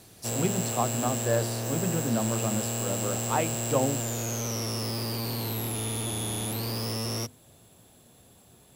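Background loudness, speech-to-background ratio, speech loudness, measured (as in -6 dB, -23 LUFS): -30.0 LUFS, -1.0 dB, -31.0 LUFS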